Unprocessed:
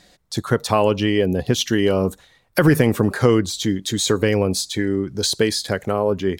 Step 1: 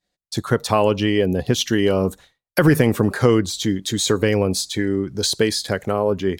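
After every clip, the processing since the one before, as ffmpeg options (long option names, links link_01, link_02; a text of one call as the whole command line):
ffmpeg -i in.wav -af "agate=range=-33dB:threshold=-38dB:ratio=3:detection=peak" out.wav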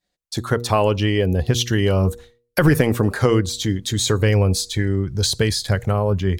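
ffmpeg -i in.wav -af "bandreject=frequency=119.1:width_type=h:width=4,bandreject=frequency=238.2:width_type=h:width=4,bandreject=frequency=357.3:width_type=h:width=4,bandreject=frequency=476.4:width_type=h:width=4,asubboost=boost=10.5:cutoff=100" out.wav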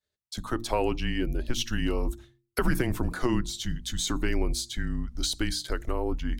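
ffmpeg -i in.wav -af "afreqshift=-130,bandreject=frequency=60:width_type=h:width=6,bandreject=frequency=120:width_type=h:width=6,bandreject=frequency=180:width_type=h:width=6,bandreject=frequency=240:width_type=h:width=6,bandreject=frequency=300:width_type=h:width=6,volume=-8.5dB" out.wav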